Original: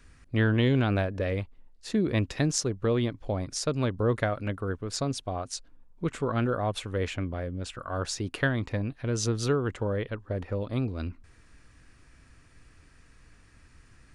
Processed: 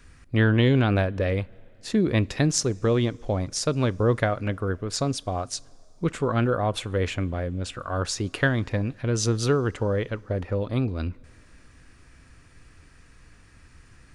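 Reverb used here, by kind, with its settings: two-slope reverb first 0.25 s, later 3.3 s, from -18 dB, DRR 19.5 dB; trim +4 dB

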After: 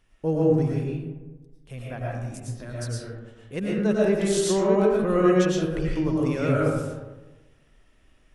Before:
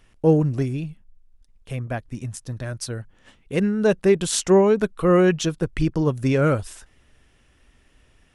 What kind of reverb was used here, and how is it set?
algorithmic reverb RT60 1.2 s, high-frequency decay 0.4×, pre-delay 70 ms, DRR -5 dB; trim -9 dB

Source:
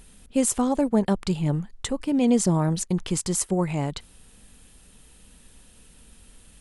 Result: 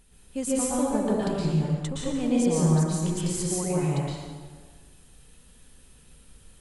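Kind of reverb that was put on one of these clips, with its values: plate-style reverb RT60 1.5 s, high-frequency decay 0.75×, pre-delay 105 ms, DRR -6.5 dB; trim -9.5 dB

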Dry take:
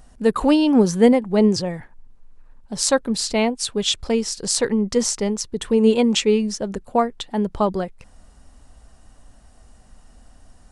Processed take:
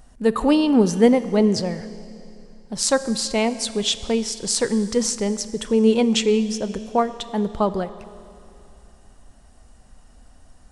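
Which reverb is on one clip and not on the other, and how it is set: Schroeder reverb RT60 2.8 s, combs from 28 ms, DRR 13.5 dB; trim -1 dB

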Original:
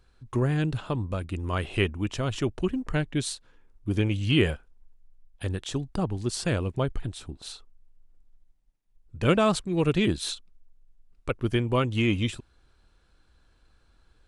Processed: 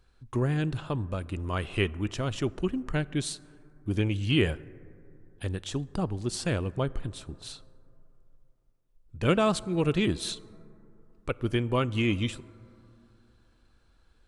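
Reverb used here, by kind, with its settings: plate-style reverb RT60 3 s, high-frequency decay 0.25×, DRR 19.5 dB; trim -2 dB

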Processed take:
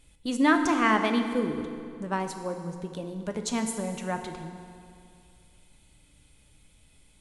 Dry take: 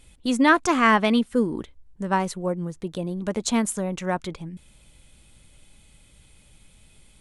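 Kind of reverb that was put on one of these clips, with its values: FDN reverb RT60 2.4 s, low-frequency decay 1.05×, high-frequency decay 0.8×, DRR 5.5 dB; trim -6 dB

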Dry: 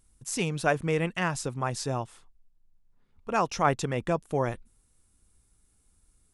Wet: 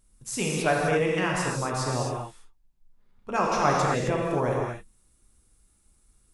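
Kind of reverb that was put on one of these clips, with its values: gated-style reverb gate 290 ms flat, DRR -3 dB; trim -1.5 dB

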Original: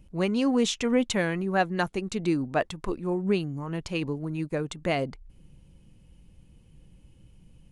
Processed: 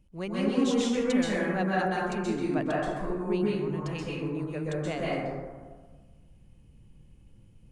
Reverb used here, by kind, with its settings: plate-style reverb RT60 1.5 s, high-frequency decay 0.35×, pre-delay 115 ms, DRR -6.5 dB; trim -9 dB

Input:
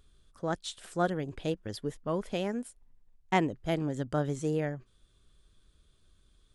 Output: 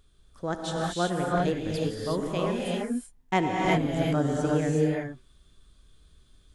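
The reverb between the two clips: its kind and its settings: gated-style reverb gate 400 ms rising, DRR -3 dB; trim +1 dB

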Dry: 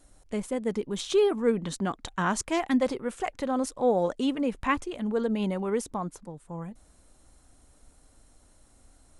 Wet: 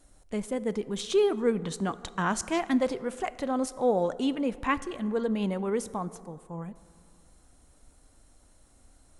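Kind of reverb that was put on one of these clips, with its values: plate-style reverb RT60 2.2 s, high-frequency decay 0.45×, DRR 15.5 dB; trim -1 dB

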